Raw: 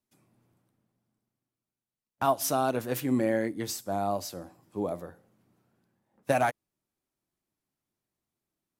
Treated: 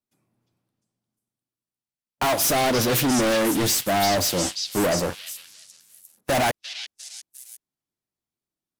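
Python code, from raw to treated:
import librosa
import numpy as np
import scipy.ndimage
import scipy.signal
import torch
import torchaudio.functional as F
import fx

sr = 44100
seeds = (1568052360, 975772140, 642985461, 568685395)

y = fx.leveller(x, sr, passes=5)
y = 10.0 ** (-24.0 / 20.0) * np.tanh(y / 10.0 ** (-24.0 / 20.0))
y = fx.echo_stepped(y, sr, ms=352, hz=4000.0, octaves=0.7, feedback_pct=70, wet_db=-1.0)
y = y * librosa.db_to_amplitude(4.5)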